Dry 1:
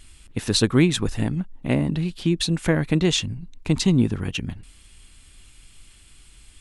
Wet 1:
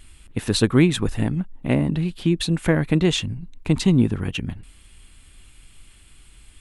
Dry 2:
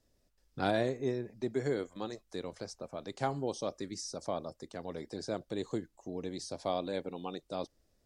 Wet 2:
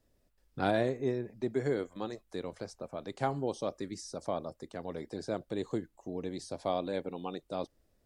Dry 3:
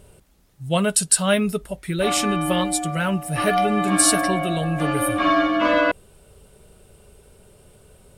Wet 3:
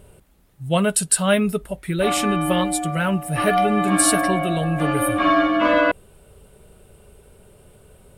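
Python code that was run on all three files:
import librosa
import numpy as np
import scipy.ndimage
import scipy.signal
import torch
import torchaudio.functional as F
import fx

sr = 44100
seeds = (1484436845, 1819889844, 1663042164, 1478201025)

y = fx.peak_eq(x, sr, hz=5600.0, db=-6.5, octaves=1.1)
y = y * librosa.db_to_amplitude(1.5)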